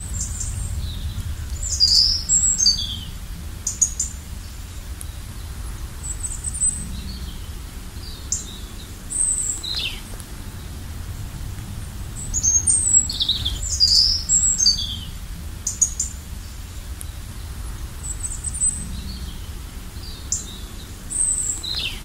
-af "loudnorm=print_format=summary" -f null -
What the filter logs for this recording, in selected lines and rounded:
Input Integrated:    -19.4 LUFS
Input True Peak:      -2.7 dBTP
Input LRA:             9.4 LU
Input Threshold:     -31.7 LUFS